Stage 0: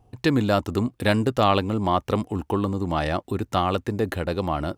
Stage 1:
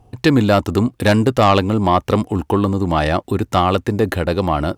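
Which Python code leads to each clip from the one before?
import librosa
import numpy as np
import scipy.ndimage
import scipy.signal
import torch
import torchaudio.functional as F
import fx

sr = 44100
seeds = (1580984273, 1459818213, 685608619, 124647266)

y = fx.fold_sine(x, sr, drive_db=4, ceiling_db=-4.0)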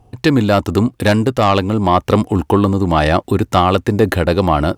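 y = fx.rider(x, sr, range_db=10, speed_s=0.5)
y = F.gain(torch.from_numpy(y), 2.0).numpy()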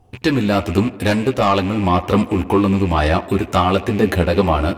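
y = fx.rattle_buzz(x, sr, strikes_db=-29.0, level_db=-19.0)
y = fx.echo_tape(y, sr, ms=82, feedback_pct=83, wet_db=-17, lp_hz=3100.0, drive_db=4.0, wow_cents=13)
y = fx.chorus_voices(y, sr, voices=6, hz=0.95, base_ms=13, depth_ms=3.0, mix_pct=40)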